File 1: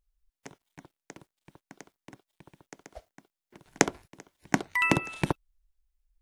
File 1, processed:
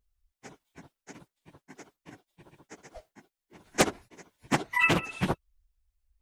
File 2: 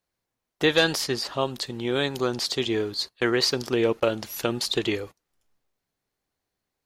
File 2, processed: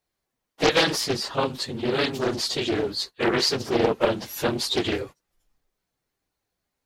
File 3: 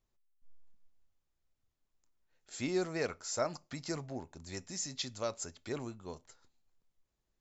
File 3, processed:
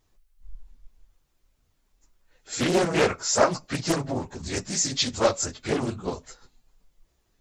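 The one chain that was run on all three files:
phase scrambler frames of 50 ms; Doppler distortion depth 0.66 ms; normalise peaks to -6 dBFS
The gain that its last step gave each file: +0.5, +1.5, +14.0 dB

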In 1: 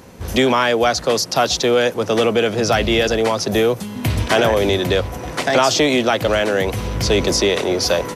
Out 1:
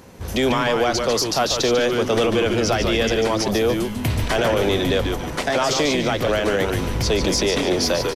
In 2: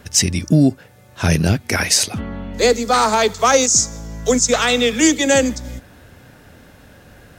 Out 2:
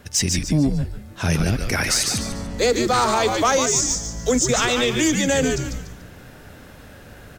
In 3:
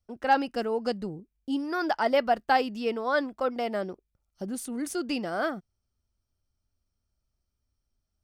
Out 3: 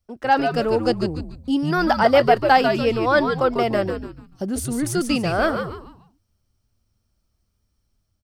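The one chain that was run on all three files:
AGC gain up to 4 dB; soft clip -4 dBFS; frequency-shifting echo 0.145 s, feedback 34%, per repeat -120 Hz, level -6 dB; maximiser +7 dB; match loudness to -20 LUFS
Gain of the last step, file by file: -9.5, -9.5, -2.5 dB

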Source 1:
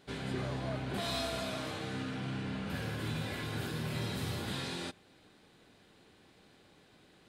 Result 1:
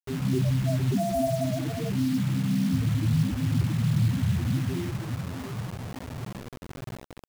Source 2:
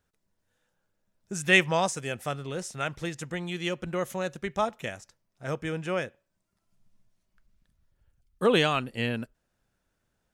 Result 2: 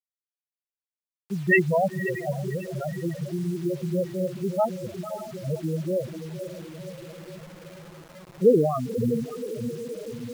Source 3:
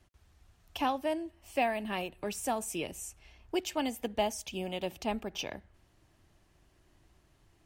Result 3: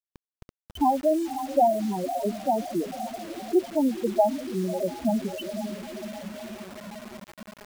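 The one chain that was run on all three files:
Wiener smoothing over 41 samples; LPF 3100 Hz 6 dB/oct; diffused feedback echo 0.543 s, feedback 68%, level -8 dB; loudest bins only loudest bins 4; bit-crush 9-bit; match loudness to -27 LUFS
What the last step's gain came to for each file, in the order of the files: +16.0, +7.5, +12.0 dB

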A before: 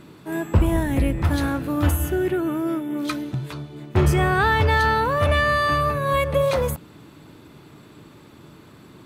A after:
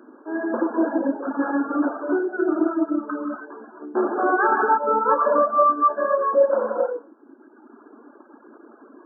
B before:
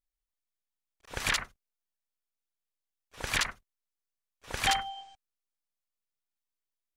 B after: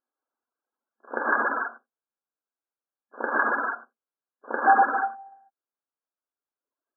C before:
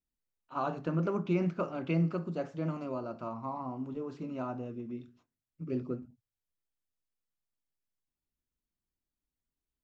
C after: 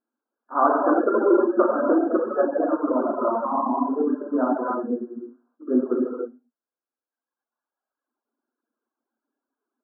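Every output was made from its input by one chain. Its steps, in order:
non-linear reverb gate 0.36 s flat, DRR -5 dB; FFT band-pass 220–1700 Hz; reverb removal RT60 1.5 s; normalise peaks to -6 dBFS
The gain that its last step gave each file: -1.0, +10.0, +12.5 dB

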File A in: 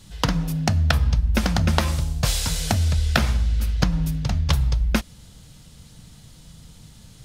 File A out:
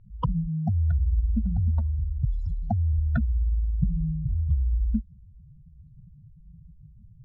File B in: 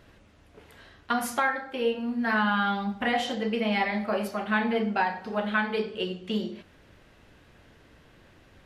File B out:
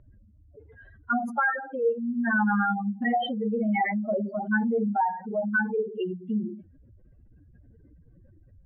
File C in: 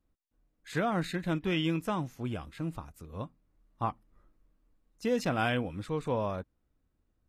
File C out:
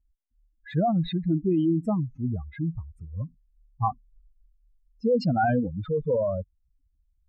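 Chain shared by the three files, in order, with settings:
spectral contrast raised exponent 3.8; low-pass opened by the level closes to 2400 Hz, open at -22 dBFS; match loudness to -27 LUFS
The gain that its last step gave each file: -3.0, +2.0, +7.5 dB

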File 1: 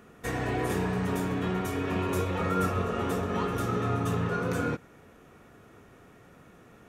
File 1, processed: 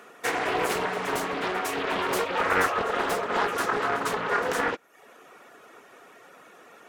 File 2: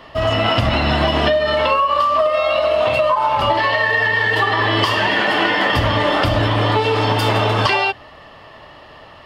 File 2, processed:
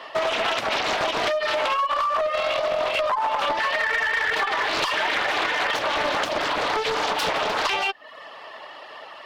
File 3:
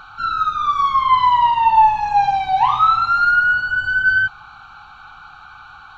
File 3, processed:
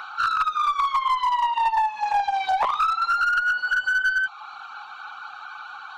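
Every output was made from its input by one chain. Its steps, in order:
reverb removal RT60 0.6 s; HPF 510 Hz 12 dB/oct; compressor 5:1, threshold -24 dBFS; one-sided clip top -23 dBFS; Doppler distortion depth 0.51 ms; normalise peaks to -12 dBFS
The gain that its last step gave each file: +9.0, +3.5, +4.5 dB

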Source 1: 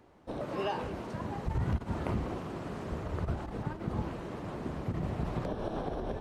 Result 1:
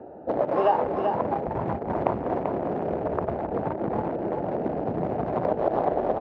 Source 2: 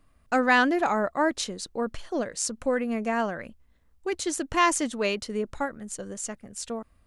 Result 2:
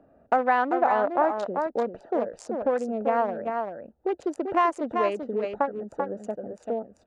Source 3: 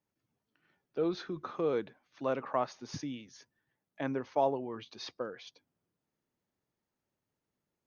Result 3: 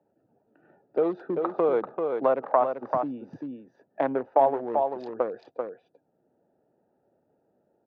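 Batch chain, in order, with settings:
Wiener smoothing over 41 samples; compressor 2:1, threshold -33 dBFS; band-pass 760 Hz, Q 1.6; echo 0.389 s -7 dB; three-band squash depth 40%; match loudness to -27 LUFS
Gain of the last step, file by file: +20.0, +13.5, +18.0 dB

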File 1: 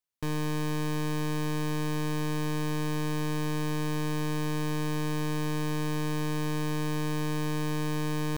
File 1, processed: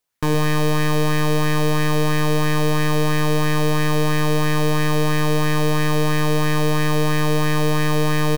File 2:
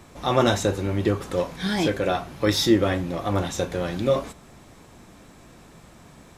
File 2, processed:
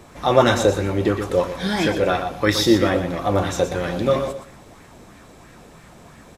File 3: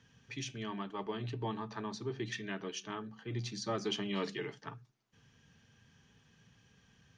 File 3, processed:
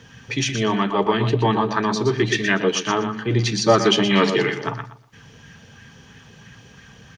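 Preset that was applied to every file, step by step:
on a send: feedback echo 0.12 s, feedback 23%, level -8.5 dB; on the sum: LFO bell 3 Hz 450–2000 Hz +7 dB; match loudness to -20 LUFS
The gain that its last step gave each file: +11.0, +1.5, +18.0 dB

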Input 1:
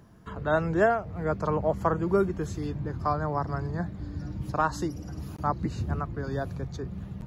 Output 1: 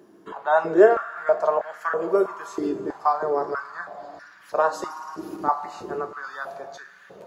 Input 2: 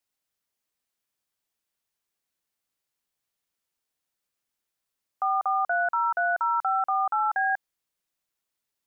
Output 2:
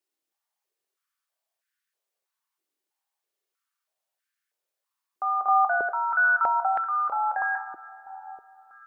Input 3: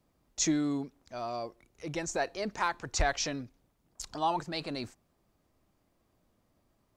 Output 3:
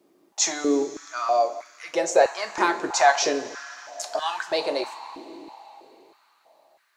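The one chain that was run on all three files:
two-slope reverb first 0.26 s, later 3.9 s, from -18 dB, DRR 4.5 dB; stepped high-pass 3.1 Hz 330–1600 Hz; match loudness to -24 LUFS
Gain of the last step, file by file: 0.0, -4.0, +6.5 dB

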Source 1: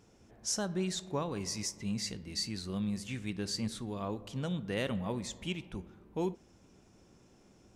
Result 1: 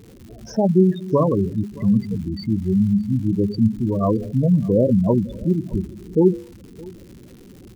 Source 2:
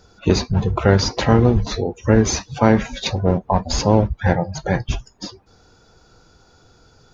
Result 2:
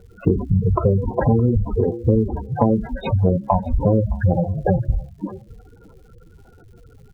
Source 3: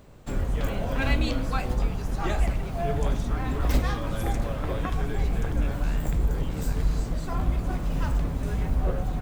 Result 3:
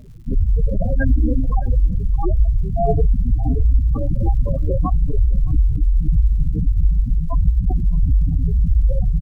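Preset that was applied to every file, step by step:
LPF 1500 Hz 12 dB/oct; de-hum 69.51 Hz, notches 14; spectral gate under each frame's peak -10 dB strong; compressor, threshold -22 dBFS; crackle 240/s -57 dBFS; echo 0.617 s -23 dB; match loudness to -20 LUFS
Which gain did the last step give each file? +20.0, +8.5, +12.0 dB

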